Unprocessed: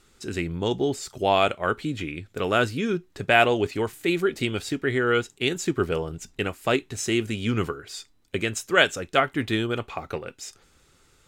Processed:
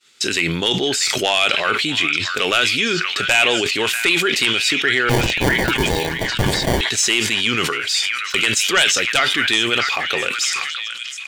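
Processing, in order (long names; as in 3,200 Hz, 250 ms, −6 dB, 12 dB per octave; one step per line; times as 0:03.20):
meter weighting curve D
downward expander −45 dBFS
high-pass filter 76 Hz
tilt shelving filter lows −3.5 dB, about 650 Hz
downward compressor 2 to 1, threshold −32 dBFS, peak gain reduction 16 dB
sine wavefolder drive 7 dB, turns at −7.5 dBFS
0:05.09–0:06.81: sample-rate reduction 1,300 Hz, jitter 0%
on a send: echo through a band-pass that steps 641 ms, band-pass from 1,700 Hz, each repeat 0.7 octaves, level −6 dB
on the sum: level that may fall only so fast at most 28 dB per second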